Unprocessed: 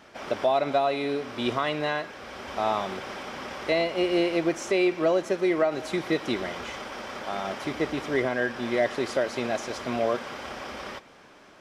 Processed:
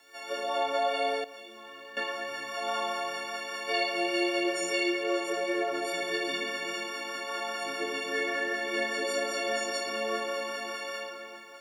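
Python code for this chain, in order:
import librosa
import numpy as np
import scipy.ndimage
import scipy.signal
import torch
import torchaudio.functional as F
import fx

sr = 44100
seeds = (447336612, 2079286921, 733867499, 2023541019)

y = fx.freq_snap(x, sr, grid_st=4)
y = fx.rotary(y, sr, hz=5.0)
y = fx.room_shoebox(y, sr, seeds[0], volume_m3=170.0, walls='hard', distance_m=0.66)
y = fx.level_steps(y, sr, step_db=19, at=(1.24, 1.97))
y = scipy.signal.sosfilt(scipy.signal.butter(2, 420.0, 'highpass', fs=sr, output='sos'), y)
y = fx.quant_dither(y, sr, seeds[1], bits=10, dither='none')
y = F.gain(torch.from_numpy(y), -7.0).numpy()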